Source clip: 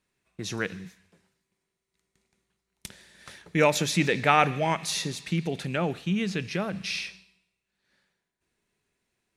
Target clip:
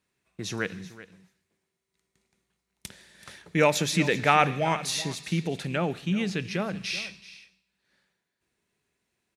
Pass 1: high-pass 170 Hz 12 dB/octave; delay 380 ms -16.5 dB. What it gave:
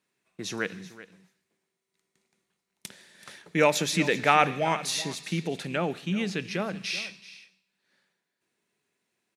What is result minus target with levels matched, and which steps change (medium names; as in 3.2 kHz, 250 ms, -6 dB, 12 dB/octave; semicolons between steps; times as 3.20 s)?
125 Hz band -3.5 dB
change: high-pass 47 Hz 12 dB/octave